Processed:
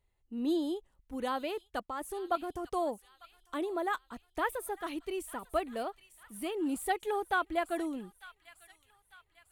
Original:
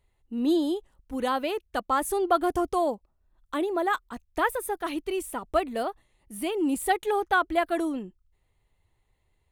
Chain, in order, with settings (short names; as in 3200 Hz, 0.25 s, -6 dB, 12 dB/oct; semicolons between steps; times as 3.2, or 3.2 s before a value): 1.83–2.72 level quantiser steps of 10 dB; on a send: thin delay 0.898 s, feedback 47%, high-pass 1900 Hz, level -13 dB; on the sum: gain -7 dB